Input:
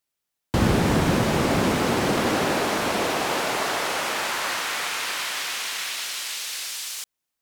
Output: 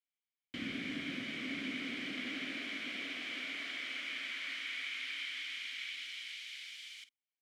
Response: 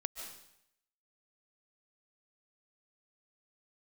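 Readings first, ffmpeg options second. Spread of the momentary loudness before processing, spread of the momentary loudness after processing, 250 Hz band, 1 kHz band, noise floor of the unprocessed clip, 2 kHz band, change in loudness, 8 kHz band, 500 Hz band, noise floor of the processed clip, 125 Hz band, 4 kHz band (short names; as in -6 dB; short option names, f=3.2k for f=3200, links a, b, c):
8 LU, 6 LU, -18.0 dB, -30.0 dB, -82 dBFS, -11.5 dB, -16.0 dB, -26.5 dB, -29.0 dB, under -85 dBFS, -30.0 dB, -12.0 dB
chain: -filter_complex "[0:a]asplit=3[a][b][c];[a]bandpass=f=270:t=q:w=8,volume=0dB[d];[b]bandpass=f=2.29k:t=q:w=8,volume=-6dB[e];[c]bandpass=f=3.01k:t=q:w=8,volume=-9dB[f];[d][e][f]amix=inputs=3:normalize=0,lowshelf=f=550:t=q:w=1.5:g=-10,asplit=2[g][h];[h]adelay=50,volume=-13.5dB[i];[g][i]amix=inputs=2:normalize=0"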